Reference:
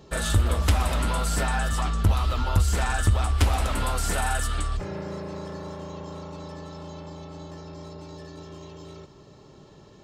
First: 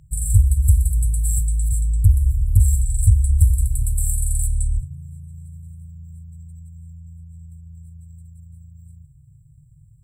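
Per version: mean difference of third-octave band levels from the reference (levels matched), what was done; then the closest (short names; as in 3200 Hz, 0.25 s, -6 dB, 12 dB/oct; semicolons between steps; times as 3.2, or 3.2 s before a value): 22.5 dB: brick-wall FIR band-stop 150–7400 Hz; gain +7.5 dB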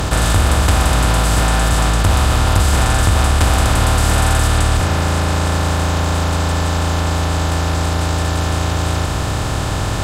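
9.0 dB: per-bin compression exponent 0.2; gain +2.5 dB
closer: second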